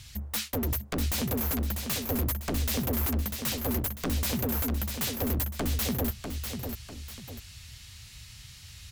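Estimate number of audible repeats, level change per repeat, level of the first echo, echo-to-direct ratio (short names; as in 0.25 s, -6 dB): 2, -8.0 dB, -6.5 dB, -6.0 dB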